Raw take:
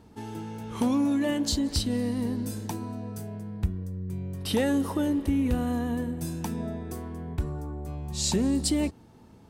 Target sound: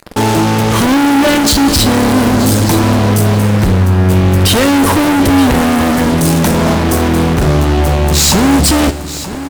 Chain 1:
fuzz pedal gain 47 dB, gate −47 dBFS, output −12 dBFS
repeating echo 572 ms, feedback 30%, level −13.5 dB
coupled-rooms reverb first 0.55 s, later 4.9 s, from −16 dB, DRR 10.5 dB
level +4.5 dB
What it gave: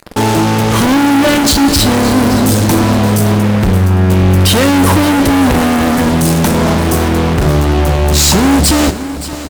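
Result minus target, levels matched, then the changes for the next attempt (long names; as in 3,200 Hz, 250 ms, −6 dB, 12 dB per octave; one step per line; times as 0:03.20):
echo 354 ms early
change: repeating echo 926 ms, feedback 30%, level −13.5 dB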